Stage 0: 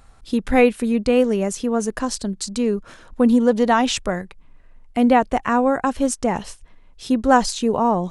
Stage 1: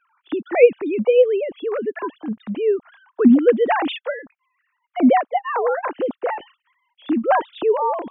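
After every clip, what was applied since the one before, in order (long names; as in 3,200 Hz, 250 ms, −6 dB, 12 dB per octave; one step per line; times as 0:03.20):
three sine waves on the formant tracks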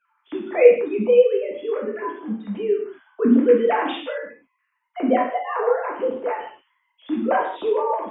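reverb whose tail is shaped and stops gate 220 ms falling, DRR −3.5 dB
level −7.5 dB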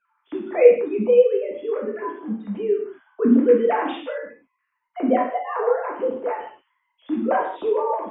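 high-shelf EQ 2,900 Hz −10.5 dB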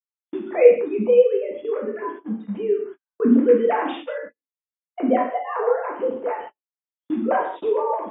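noise gate −34 dBFS, range −45 dB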